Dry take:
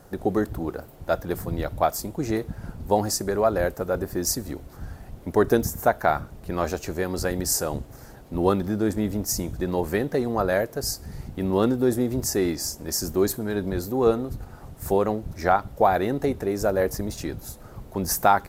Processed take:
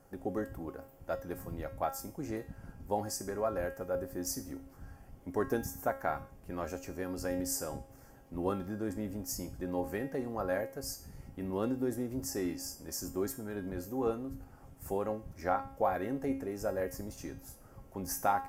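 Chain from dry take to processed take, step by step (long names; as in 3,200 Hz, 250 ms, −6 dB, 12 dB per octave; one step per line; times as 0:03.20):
parametric band 3,900 Hz −12.5 dB 0.28 octaves
tuned comb filter 270 Hz, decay 0.46 s, harmonics all, mix 80%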